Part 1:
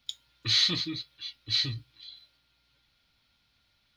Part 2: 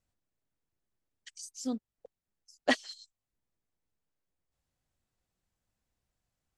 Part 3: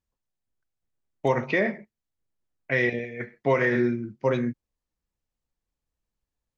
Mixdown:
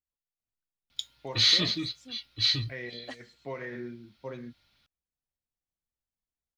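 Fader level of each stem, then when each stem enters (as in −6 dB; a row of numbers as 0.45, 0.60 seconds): +2.0, −16.0, −16.0 decibels; 0.90, 0.40, 0.00 seconds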